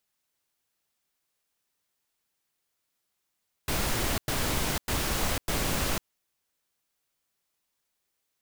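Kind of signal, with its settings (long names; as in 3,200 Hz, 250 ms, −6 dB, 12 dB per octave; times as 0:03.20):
noise bursts pink, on 0.50 s, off 0.10 s, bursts 4, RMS −28 dBFS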